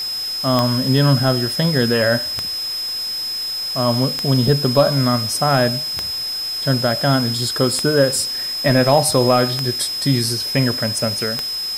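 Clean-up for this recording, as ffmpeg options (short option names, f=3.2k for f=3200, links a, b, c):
-af "adeclick=t=4,bandreject=f=5.1k:w=30,afwtdn=0.018"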